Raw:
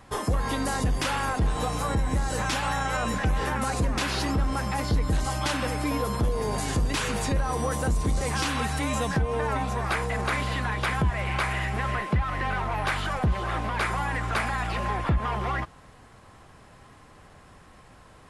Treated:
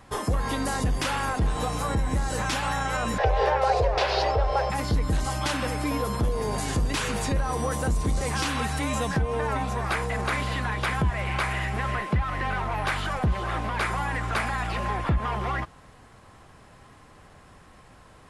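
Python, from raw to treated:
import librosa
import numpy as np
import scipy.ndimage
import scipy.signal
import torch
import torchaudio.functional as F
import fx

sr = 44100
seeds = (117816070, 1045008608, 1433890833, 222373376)

y = fx.curve_eq(x, sr, hz=(110.0, 250.0, 410.0, 680.0, 1200.0, 5000.0, 7200.0, 13000.0), db=(0, -27, 9, 13, 0, 2, -12, -20), at=(3.18, 4.7))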